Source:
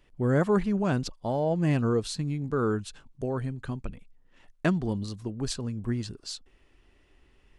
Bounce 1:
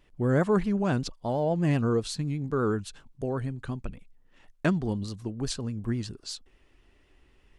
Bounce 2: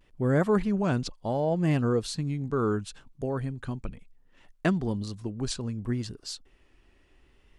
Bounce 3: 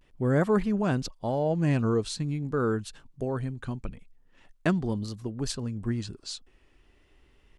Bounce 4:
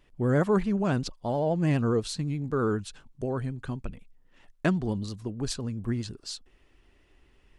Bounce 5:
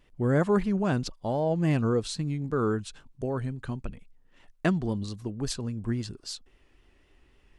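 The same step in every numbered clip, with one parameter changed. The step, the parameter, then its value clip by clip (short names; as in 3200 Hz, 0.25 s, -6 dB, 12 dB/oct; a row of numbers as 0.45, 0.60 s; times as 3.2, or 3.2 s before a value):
vibrato, rate: 8.1, 0.69, 0.44, 12, 3.7 Hz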